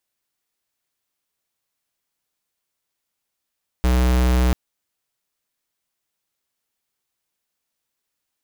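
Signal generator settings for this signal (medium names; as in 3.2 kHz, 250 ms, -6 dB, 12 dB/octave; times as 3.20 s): tone square 62.5 Hz -16.5 dBFS 0.69 s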